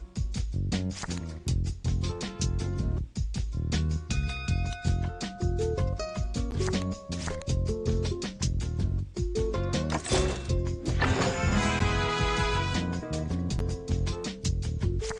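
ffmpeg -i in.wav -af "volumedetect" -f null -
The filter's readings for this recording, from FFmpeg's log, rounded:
mean_volume: -28.8 dB
max_volume: -12.1 dB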